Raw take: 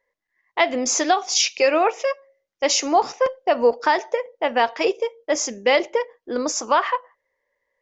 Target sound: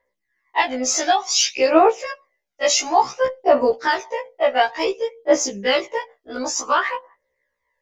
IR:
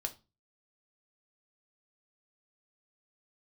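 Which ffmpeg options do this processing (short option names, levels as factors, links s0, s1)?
-af "aphaser=in_gain=1:out_gain=1:delay=1.6:decay=0.59:speed=0.56:type=triangular,afftfilt=real='re*1.73*eq(mod(b,3),0)':imag='im*1.73*eq(mod(b,3),0)':win_size=2048:overlap=0.75,volume=1.26"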